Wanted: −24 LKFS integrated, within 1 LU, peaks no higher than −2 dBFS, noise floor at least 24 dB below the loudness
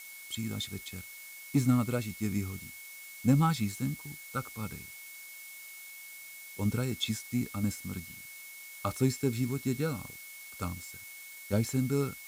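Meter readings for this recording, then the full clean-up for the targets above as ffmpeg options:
interfering tone 2,200 Hz; level of the tone −48 dBFS; background noise floor −48 dBFS; target noise floor −57 dBFS; integrated loudness −33.0 LKFS; sample peak −13.5 dBFS; target loudness −24.0 LKFS
→ -af "bandreject=frequency=2200:width=30"
-af "afftdn=noise_reduction=9:noise_floor=-48"
-af "volume=9dB"

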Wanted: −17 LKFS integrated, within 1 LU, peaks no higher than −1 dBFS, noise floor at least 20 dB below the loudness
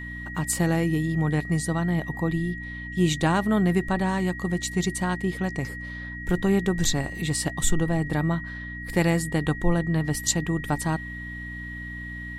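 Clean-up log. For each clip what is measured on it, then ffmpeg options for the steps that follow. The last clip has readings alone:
mains hum 60 Hz; hum harmonics up to 300 Hz; level of the hum −36 dBFS; interfering tone 1,900 Hz; level of the tone −36 dBFS; integrated loudness −26.0 LKFS; sample peak −8.0 dBFS; target loudness −17.0 LKFS
→ -af "bandreject=frequency=60:width_type=h:width=4,bandreject=frequency=120:width_type=h:width=4,bandreject=frequency=180:width_type=h:width=4,bandreject=frequency=240:width_type=h:width=4,bandreject=frequency=300:width_type=h:width=4"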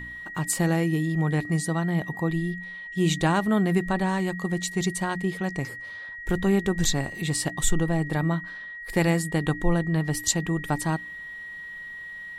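mains hum none found; interfering tone 1,900 Hz; level of the tone −36 dBFS
→ -af "bandreject=frequency=1900:width=30"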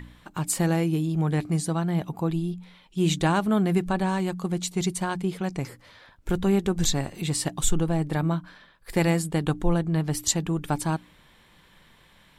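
interfering tone none found; integrated loudness −26.0 LKFS; sample peak −9.0 dBFS; target loudness −17.0 LKFS
→ -af "volume=9dB,alimiter=limit=-1dB:level=0:latency=1"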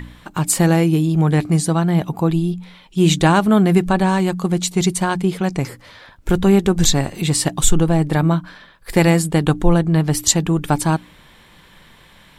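integrated loudness −17.0 LKFS; sample peak −1.0 dBFS; background noise floor −48 dBFS

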